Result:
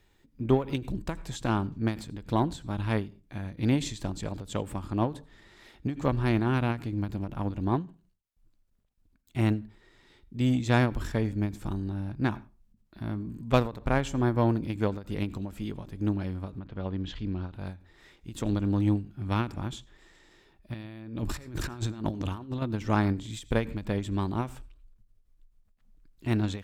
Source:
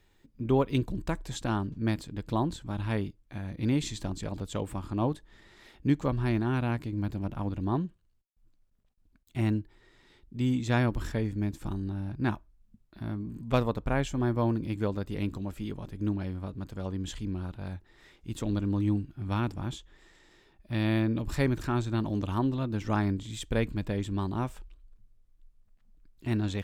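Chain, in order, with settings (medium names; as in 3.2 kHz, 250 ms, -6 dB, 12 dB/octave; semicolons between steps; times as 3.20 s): 16.58–17.53 s: low-pass 3.2 kHz -> 6 kHz 24 dB/octave; 20.74–22.62 s: compressor with a negative ratio -34 dBFS, ratio -0.5; Chebyshev shaper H 7 -29 dB, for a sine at -11 dBFS; on a send at -22 dB: reverberation RT60 0.30 s, pre-delay 77 ms; on the sum: endings held to a fixed fall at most 170 dB/s; trim +3.5 dB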